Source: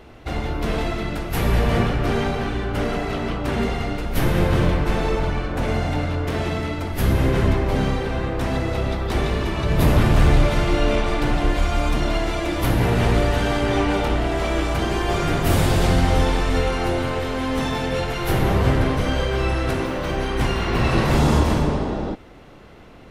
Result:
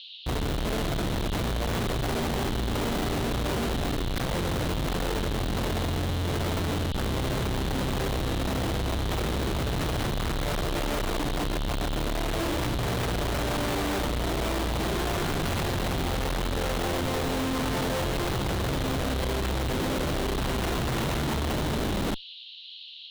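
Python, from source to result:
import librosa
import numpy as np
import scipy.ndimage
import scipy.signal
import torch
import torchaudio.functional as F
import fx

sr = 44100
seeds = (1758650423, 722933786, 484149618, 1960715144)

y = fx.schmitt(x, sr, flips_db=-27.0)
y = fx.dmg_noise_band(y, sr, seeds[0], low_hz=2800.0, high_hz=4200.0, level_db=-37.0)
y = F.gain(torch.from_numpy(y), -7.5).numpy()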